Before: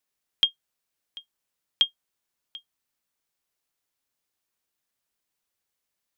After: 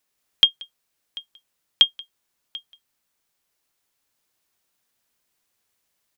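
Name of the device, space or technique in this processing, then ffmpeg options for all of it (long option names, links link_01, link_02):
ducked delay: -filter_complex "[0:a]asplit=3[link_01][link_02][link_03];[link_02]adelay=181,volume=-3.5dB[link_04];[link_03]apad=whole_len=280367[link_05];[link_04][link_05]sidechaincompress=threshold=-47dB:ratio=3:attack=16:release=1300[link_06];[link_01][link_06]amix=inputs=2:normalize=0,volume=6.5dB"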